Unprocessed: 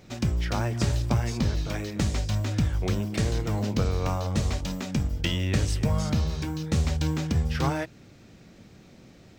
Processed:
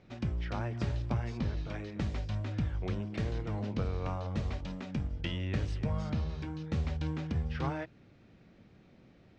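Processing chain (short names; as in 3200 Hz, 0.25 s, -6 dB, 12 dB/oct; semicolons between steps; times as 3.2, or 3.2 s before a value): LPF 3200 Hz 12 dB/oct; gain -8 dB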